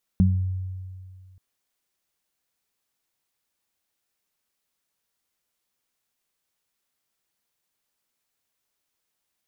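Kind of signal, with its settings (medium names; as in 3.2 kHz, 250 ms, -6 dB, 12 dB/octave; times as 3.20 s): additive tone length 1.18 s, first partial 93.2 Hz, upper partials 3 dB, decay 2.12 s, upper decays 0.39 s, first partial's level -16 dB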